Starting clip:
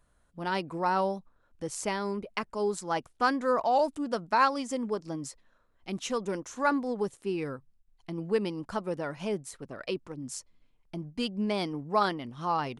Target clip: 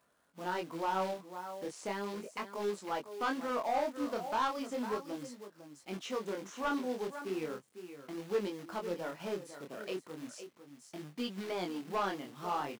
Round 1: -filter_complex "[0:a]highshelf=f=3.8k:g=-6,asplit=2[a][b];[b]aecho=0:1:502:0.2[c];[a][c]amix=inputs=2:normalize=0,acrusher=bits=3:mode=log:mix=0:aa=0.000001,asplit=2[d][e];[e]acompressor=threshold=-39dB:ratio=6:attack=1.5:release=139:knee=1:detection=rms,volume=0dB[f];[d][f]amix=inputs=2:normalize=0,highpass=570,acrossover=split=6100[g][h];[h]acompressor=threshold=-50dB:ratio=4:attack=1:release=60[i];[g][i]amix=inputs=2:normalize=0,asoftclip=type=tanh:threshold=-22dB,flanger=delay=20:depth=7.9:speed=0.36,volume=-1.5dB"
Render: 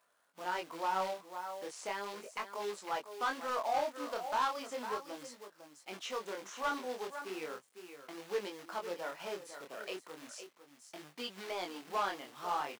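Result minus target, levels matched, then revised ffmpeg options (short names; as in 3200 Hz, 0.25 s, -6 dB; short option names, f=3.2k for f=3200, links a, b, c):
compressor: peak gain reduction -8.5 dB; 250 Hz band -7.5 dB
-filter_complex "[0:a]highshelf=f=3.8k:g=-6,asplit=2[a][b];[b]aecho=0:1:502:0.2[c];[a][c]amix=inputs=2:normalize=0,acrusher=bits=3:mode=log:mix=0:aa=0.000001,asplit=2[d][e];[e]acompressor=threshold=-49dB:ratio=6:attack=1.5:release=139:knee=1:detection=rms,volume=0dB[f];[d][f]amix=inputs=2:normalize=0,highpass=230,acrossover=split=6100[g][h];[h]acompressor=threshold=-50dB:ratio=4:attack=1:release=60[i];[g][i]amix=inputs=2:normalize=0,asoftclip=type=tanh:threshold=-22dB,flanger=delay=20:depth=7.9:speed=0.36,volume=-1.5dB"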